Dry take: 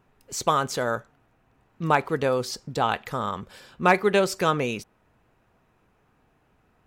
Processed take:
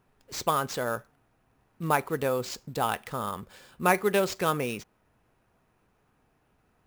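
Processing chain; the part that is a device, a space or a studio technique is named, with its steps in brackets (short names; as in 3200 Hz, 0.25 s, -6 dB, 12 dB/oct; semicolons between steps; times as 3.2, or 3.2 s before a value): early companding sampler (sample-rate reducer 12000 Hz, jitter 0%; companded quantiser 8-bit); gain -4 dB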